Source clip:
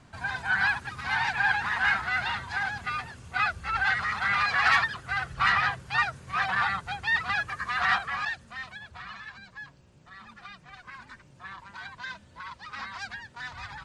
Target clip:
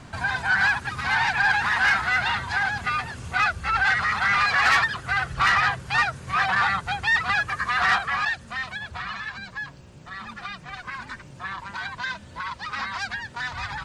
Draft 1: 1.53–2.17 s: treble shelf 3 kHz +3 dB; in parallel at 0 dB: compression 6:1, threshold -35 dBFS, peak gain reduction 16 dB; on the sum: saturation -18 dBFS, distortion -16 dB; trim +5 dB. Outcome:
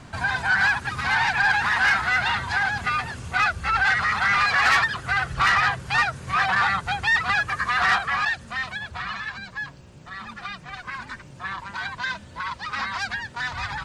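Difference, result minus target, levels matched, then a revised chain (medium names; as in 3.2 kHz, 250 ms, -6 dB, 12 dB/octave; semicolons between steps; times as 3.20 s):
compression: peak gain reduction -6 dB
1.53–2.17 s: treble shelf 3 kHz +3 dB; in parallel at 0 dB: compression 6:1, threshold -42 dBFS, peak gain reduction 21.5 dB; on the sum: saturation -18 dBFS, distortion -17 dB; trim +5 dB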